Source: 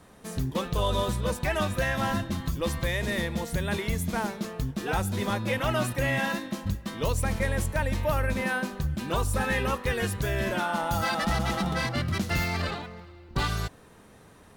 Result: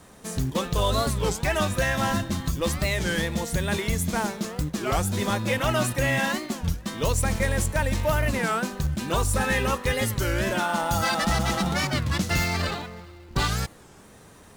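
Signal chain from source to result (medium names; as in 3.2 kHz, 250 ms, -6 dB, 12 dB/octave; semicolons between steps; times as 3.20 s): peaking EQ 7.2 kHz +6 dB 1.1 oct; in parallel at -9 dB: companded quantiser 4-bit; on the sum: warped record 33 1/3 rpm, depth 250 cents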